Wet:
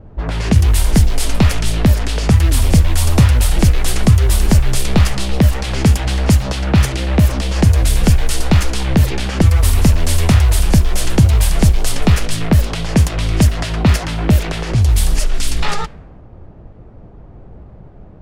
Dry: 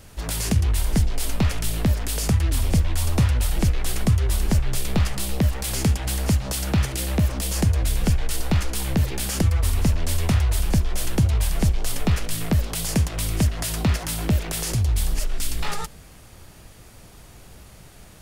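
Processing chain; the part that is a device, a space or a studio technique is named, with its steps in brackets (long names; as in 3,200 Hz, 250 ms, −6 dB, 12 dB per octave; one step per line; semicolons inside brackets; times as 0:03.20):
cassette deck with a dynamic noise filter (white noise bed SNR 33 dB; low-pass that shuts in the quiet parts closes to 560 Hz, open at −16 dBFS)
level +9 dB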